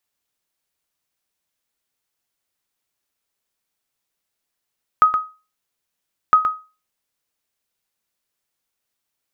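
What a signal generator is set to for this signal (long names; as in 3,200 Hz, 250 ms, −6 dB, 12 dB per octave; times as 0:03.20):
ping with an echo 1,260 Hz, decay 0.31 s, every 1.31 s, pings 2, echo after 0.12 s, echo −8 dB −4.5 dBFS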